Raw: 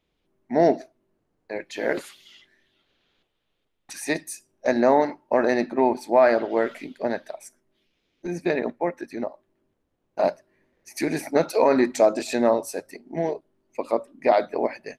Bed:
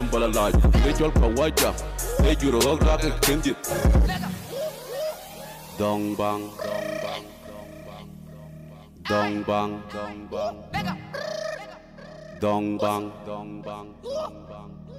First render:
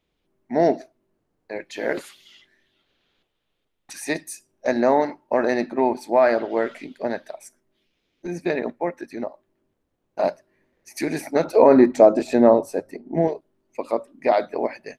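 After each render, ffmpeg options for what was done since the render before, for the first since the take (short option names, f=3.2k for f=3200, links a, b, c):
-filter_complex "[0:a]asettb=1/sr,asplit=3[a][b][c];[a]atrim=end=6.404[d];[b]atrim=start=6.4:end=6.92,asetpts=PTS-STARTPTS,afade=t=in:d=0.004:c=qsin,afade=t=out:st=0.516:d=0.004:c=qsin,lowpass=9.9k[e];[c]atrim=start=6.916[f];[d][e]acrossfade=d=0.004:c1=hsin:c2=qsin[g];[g][f]acrossfade=d=0.004:c1=qsin:c2=hsin,asettb=1/sr,asplit=3[h][i][j];[h]atrim=end=11.444[k];[i]atrim=start=11.44:end=13.28,asetpts=PTS-STARTPTS,afade=t=in:d=0.004:c=qsin,afade=t=out:st=1.836:d=0.004:c=qsin,tiltshelf=f=1.5k:g=7.5[l];[j]atrim=start=13.276[m];[k][l]acrossfade=d=0.004:c1=hsin:c2=qsin[n];[n][m]acrossfade=d=0.004:c1=qsin:c2=hsin"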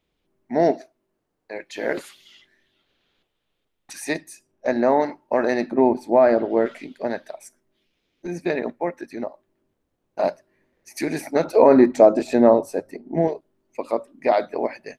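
-filter_complex "[0:a]asettb=1/sr,asplit=3[a][b][c];[a]atrim=end=0.714[d];[b]atrim=start=0.71:end=1.76,asetpts=PTS-STARTPTS,afade=t=in:d=0.004:c=qsin,afade=t=out:st=1.046:d=0.004:c=qsin,lowshelf=f=300:g=-7[e];[c]atrim=start=1.756[f];[d][e]acrossfade=d=0.004:c1=hsin:c2=qsin[g];[g][f]acrossfade=d=0.004:c1=qsin:c2=hsin,asettb=1/sr,asplit=3[h][i][j];[h]atrim=end=4.164[k];[i]atrim=start=4.16:end=5,asetpts=PTS-STARTPTS,afade=t=in:d=0.004:c=qsin,afade=t=out:st=0.836:d=0.004:c=qsin,highshelf=f=4.1k:g=-8.5[l];[j]atrim=start=4.996[m];[k][l]acrossfade=d=0.004:c1=hsin:c2=qsin[n];[n][m]acrossfade=d=0.004:c1=qsin:c2=hsin,asettb=1/sr,asplit=3[o][p][q];[o]atrim=end=5.714[r];[p]atrim=start=5.71:end=6.66,asetpts=PTS-STARTPTS,afade=t=in:d=0.004:c=qsin,afade=t=out:st=0.946:d=0.004:c=qsin,tiltshelf=f=810:g=6.5[s];[q]atrim=start=6.656[t];[r][s]acrossfade=d=0.004:c1=hsin:c2=qsin[u];[u][t]acrossfade=d=0.004:c1=qsin:c2=hsin"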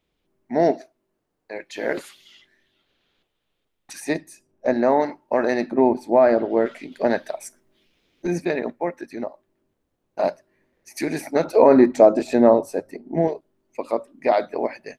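-filter_complex "[0:a]asettb=1/sr,asplit=3[a][b][c];[a]atrim=end=4.004[d];[b]atrim=start=4:end=4.74,asetpts=PTS-STARTPTS,afade=t=in:d=0.004:c=qsin,afade=t=out:st=0.736:d=0.004:c=qsin,tiltshelf=f=970:g=3.5[e];[c]atrim=start=4.736[f];[d][e]acrossfade=d=0.004:c1=hsin:c2=qsin[g];[g][f]acrossfade=d=0.004:c1=qsin:c2=hsin,asettb=1/sr,asplit=3[h][i][j];[h]atrim=end=6.924[k];[i]atrim=start=6.92:end=8.45,asetpts=PTS-STARTPTS,afade=t=in:d=0.004:c=qsin,afade=t=out:st=1.526:d=0.004:c=qsin,acontrast=58[l];[j]atrim=start=8.446[m];[k][l]acrossfade=d=0.004:c1=hsin:c2=qsin[n];[n][m]acrossfade=d=0.004:c1=qsin:c2=hsin"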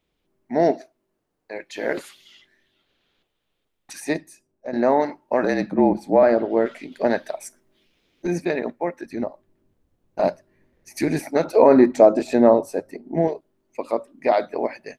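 -filter_complex "[0:a]asettb=1/sr,asplit=3[a][b][c];[a]atrim=end=5.424[d];[b]atrim=start=5.42:end=6.23,asetpts=PTS-STARTPTS,afade=t=in:d=0.004:c=qsin,afade=t=out:st=0.806:d=0.004:c=qsin,afreqshift=-39[e];[c]atrim=start=6.226[f];[d][e]acrossfade=d=0.004:c1=hsin:c2=qsin[g];[g][f]acrossfade=d=0.004:c1=qsin:c2=hsin,asettb=1/sr,asplit=3[h][i][j];[h]atrim=end=9.054[k];[i]atrim=start=9.05:end=11.2,asetpts=PTS-STARTPTS,afade=t=in:d=0.004:c=qsin,afade=t=out:st=2.146:d=0.004:c=qsin,lowshelf=f=200:g=11.5[l];[j]atrim=start=11.196[m];[k][l]acrossfade=d=0.004:c1=hsin:c2=qsin[n];[n][m]acrossfade=d=0.004:c1=qsin:c2=hsin,asplit=2[o][p];[o]atrim=end=4.73,asetpts=PTS-STARTPTS,afade=t=out:st=4.14:d=0.59:silence=0.237137[q];[p]atrim=start=4.73,asetpts=PTS-STARTPTS,afade=t=in:d=0.004:c=hsin:silence=0.237137[r];[q][r]concat=n=2:v=0:a=1"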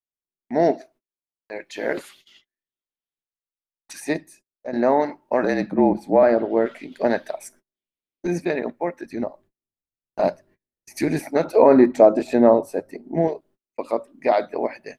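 -af "agate=range=-33dB:threshold=-50dB:ratio=16:detection=peak,adynamicequalizer=threshold=0.00355:dfrequency=6100:dqfactor=0.99:tfrequency=6100:tqfactor=0.99:attack=5:release=100:ratio=0.375:range=2.5:mode=cutabove:tftype=bell"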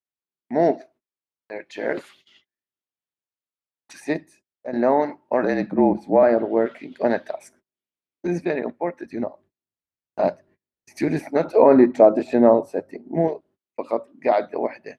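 -af "highpass=59,aemphasis=mode=reproduction:type=50kf"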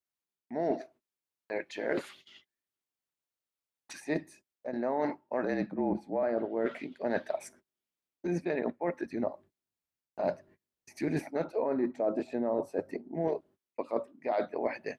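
-af "alimiter=limit=-7.5dB:level=0:latency=1:release=457,areverse,acompressor=threshold=-28dB:ratio=6,areverse"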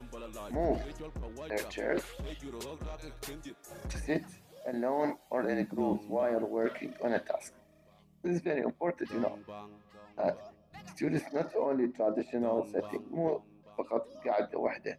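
-filter_complex "[1:a]volume=-22dB[a];[0:a][a]amix=inputs=2:normalize=0"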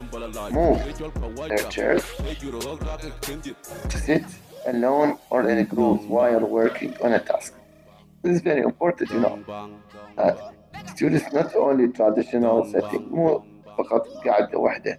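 -af "volume=11.5dB"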